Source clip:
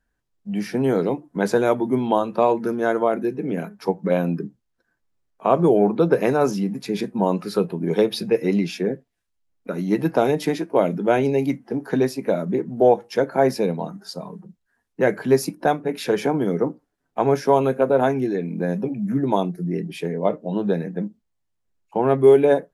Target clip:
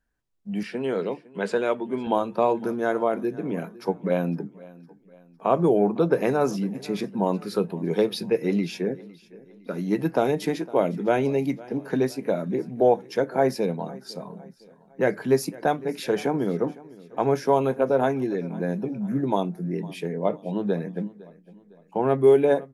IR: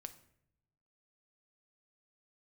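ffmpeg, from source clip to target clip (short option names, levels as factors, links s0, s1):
-filter_complex "[0:a]asettb=1/sr,asplit=3[s0][s1][s2];[s0]atrim=end=0.634[s3];[s1]atrim=start=0.63:end=2.07,asetpts=PTS-STARTPTS,afade=t=in:d=0.004:c=qsin,afade=t=out:st=1.436:d=0.004:c=qsin,highpass=230,equalizer=f=300:t=q:w=4:g=-8,equalizer=f=780:t=q:w=4:g=-6,equalizer=f=2800:t=q:w=4:g=7,equalizer=f=6000:t=q:w=4:g=-10,lowpass=f=8400:w=0.5412,lowpass=f=8400:w=1.3066[s4];[s2]atrim=start=2.066[s5];[s3][s4]acrossfade=d=0.004:c1=hsin:c2=qsin[s6];[s6][s5]acrossfade=d=0.004:c1=qsin:c2=hsin,aecho=1:1:507|1014|1521:0.0891|0.0392|0.0173,volume=0.668"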